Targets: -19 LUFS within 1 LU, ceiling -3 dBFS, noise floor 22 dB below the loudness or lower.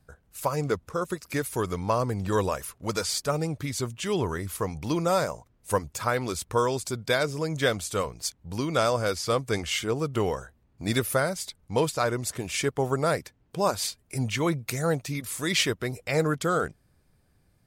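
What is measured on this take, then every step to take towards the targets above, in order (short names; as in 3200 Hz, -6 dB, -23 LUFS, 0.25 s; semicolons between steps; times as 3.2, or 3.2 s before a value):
loudness -28.0 LUFS; peak -10.0 dBFS; loudness target -19.0 LUFS
-> gain +9 dB; limiter -3 dBFS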